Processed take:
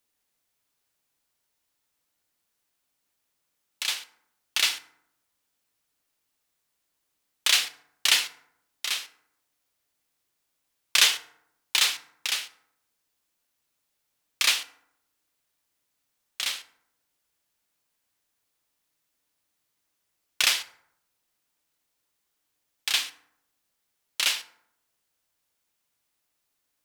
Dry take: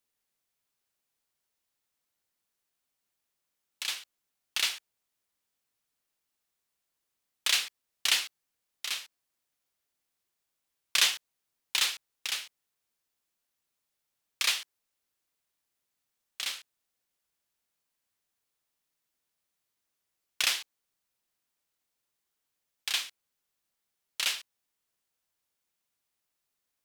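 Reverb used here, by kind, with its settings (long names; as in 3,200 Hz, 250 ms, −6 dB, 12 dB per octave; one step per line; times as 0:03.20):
feedback delay network reverb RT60 0.75 s, low-frequency decay 1.2×, high-frequency decay 0.5×, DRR 10.5 dB
level +5 dB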